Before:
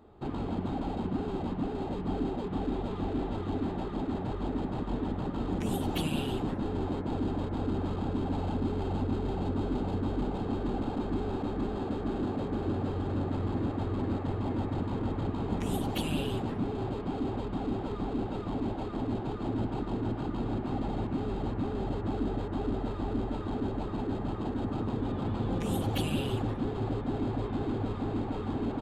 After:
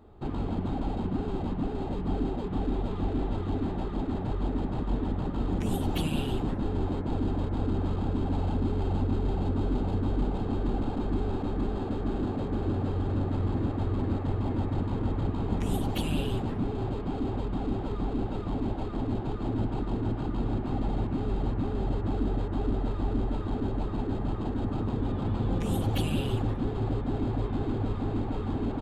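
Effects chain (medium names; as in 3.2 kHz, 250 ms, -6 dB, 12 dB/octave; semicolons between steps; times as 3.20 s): bass shelf 85 Hz +10 dB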